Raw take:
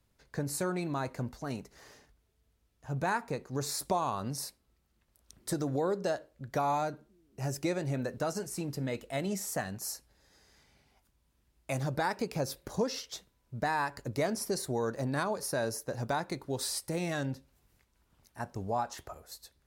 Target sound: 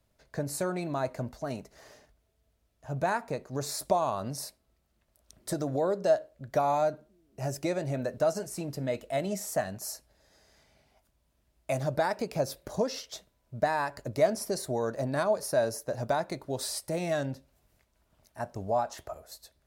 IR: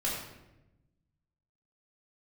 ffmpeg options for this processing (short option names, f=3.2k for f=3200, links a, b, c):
-af "equalizer=f=630:w=5:g=11"